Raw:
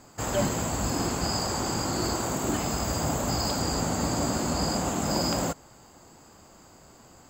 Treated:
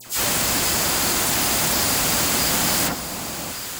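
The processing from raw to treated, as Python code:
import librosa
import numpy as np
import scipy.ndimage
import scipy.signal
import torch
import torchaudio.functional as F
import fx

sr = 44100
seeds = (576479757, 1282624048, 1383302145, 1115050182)

p1 = fx.envelope_flatten(x, sr, power=0.3)
p2 = fx.auto_swell(p1, sr, attack_ms=118.0)
p3 = fx.fold_sine(p2, sr, drive_db=16, ceiling_db=-11.0)
p4 = p2 + (p3 * 10.0 ** (-8.5 / 20.0))
p5 = fx.stretch_vocoder_free(p4, sr, factor=0.52)
p6 = fx.dispersion(p5, sr, late='lows', ms=67.0, hz=2200.0)
p7 = fx.dmg_buzz(p6, sr, base_hz=120.0, harmonics=8, level_db=-56.0, tilt_db=-4, odd_only=False)
p8 = p7 + fx.echo_alternate(p7, sr, ms=580, hz=1100.0, feedback_pct=64, wet_db=-7.0, dry=0)
y = p8 * 10.0 ** (2.0 / 20.0)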